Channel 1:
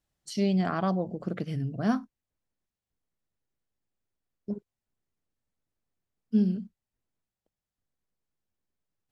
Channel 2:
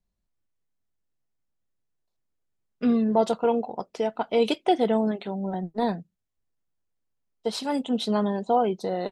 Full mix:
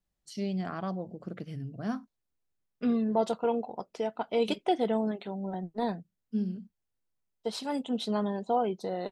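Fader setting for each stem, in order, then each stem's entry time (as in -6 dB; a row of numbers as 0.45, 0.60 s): -7.0, -5.5 dB; 0.00, 0.00 s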